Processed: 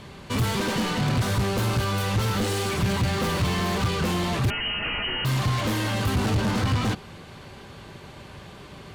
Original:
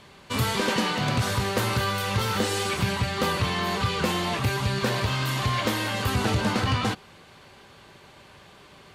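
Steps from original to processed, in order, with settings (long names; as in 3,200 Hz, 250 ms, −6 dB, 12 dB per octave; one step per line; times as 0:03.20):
soft clipping −30.5 dBFS, distortion −7 dB
0:01.48–0:02.00: notch filter 1,900 Hz, Q 9.5
0:02.89–0:03.88: leveller curve on the samples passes 1
0:04.50–0:05.25: voice inversion scrambler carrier 3,000 Hz
low-shelf EQ 340 Hz +9 dB
level +4 dB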